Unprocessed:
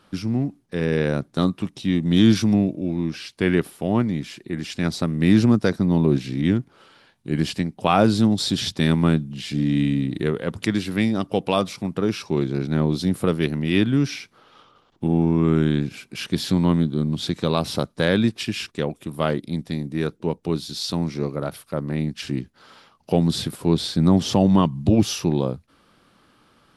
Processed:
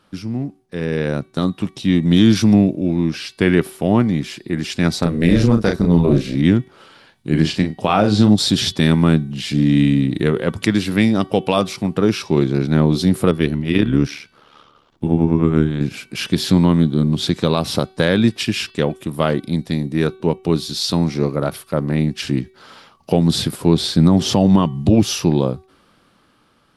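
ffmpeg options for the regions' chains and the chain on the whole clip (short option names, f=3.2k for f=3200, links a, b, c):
-filter_complex "[0:a]asettb=1/sr,asplit=3[a][b][c];[a]atrim=end=4.994[d];[b]atrim=start=4.99:end=6.35,asetpts=PTS-STARTPTS,afade=t=in:d=0.004:c=qsin,afade=t=out:st=1.356:d=0.004:c=qsin,tremolo=f=250:d=0.571,asplit=2[e][f];[f]adelay=35,volume=-4dB[g];[e][g]amix=inputs=2:normalize=0,atrim=end_sample=59976[h];[c]atrim=start=6.346[i];[d][h]acrossfade=d=0.004:c1=hsin:c2=qsin[j];[j][i]acrossfade=d=0.004:c1=qsin:c2=hsin,asettb=1/sr,asplit=3[k][l][m];[k]atrim=end=7.294[n];[l]atrim=start=7.29:end=8.36,asetpts=PTS-STARTPTS,afade=t=in:d=0.004:c=qsin,afade=t=out:st=1.066:d=0.004:c=qsin,acrossover=split=7500[o][p];[p]acompressor=threshold=-58dB:ratio=4:attack=1:release=60[q];[o][q]amix=inputs=2:normalize=0,asplit=2[r][s];[s]adelay=38,volume=-8dB[t];[r][t]amix=inputs=2:normalize=0,atrim=end_sample=47187[u];[m]atrim=start=8.356[v];[n][u]acrossfade=d=0.004:c1=hsin:c2=qsin[w];[w][v]acrossfade=d=0.004:c1=qsin:c2=hsin,asettb=1/sr,asplit=3[x][y][z];[x]atrim=end=13.314[aa];[y]atrim=start=13.31:end=15.81,asetpts=PTS-STARTPTS,afade=t=in:d=0.004:c=qsin,afade=t=out:st=2.496:d=0.004:c=qsin,bandreject=f=770:w=17,tremolo=f=73:d=0.71,adynamicequalizer=threshold=0.00708:dfrequency=2200:dqfactor=0.7:tfrequency=2200:tqfactor=0.7:attack=5:release=100:ratio=0.375:range=2.5:mode=cutabove:tftype=highshelf[ab];[z]atrim=start=15.806[ac];[aa][ab]acrossfade=d=0.004:c1=hsin:c2=qsin[ad];[ad][ac]acrossfade=d=0.004:c1=qsin:c2=hsin,alimiter=limit=-9dB:level=0:latency=1:release=174,dynaudnorm=f=320:g=9:m=11.5dB,bandreject=f=379.2:t=h:w=4,bandreject=f=758.4:t=h:w=4,bandreject=f=1.1376k:t=h:w=4,bandreject=f=1.5168k:t=h:w=4,bandreject=f=1.896k:t=h:w=4,bandreject=f=2.2752k:t=h:w=4,bandreject=f=2.6544k:t=h:w=4,bandreject=f=3.0336k:t=h:w=4,bandreject=f=3.4128k:t=h:w=4,bandreject=f=3.792k:t=h:w=4,bandreject=f=4.1712k:t=h:w=4,bandreject=f=4.5504k:t=h:w=4,bandreject=f=4.9296k:t=h:w=4,volume=-1dB"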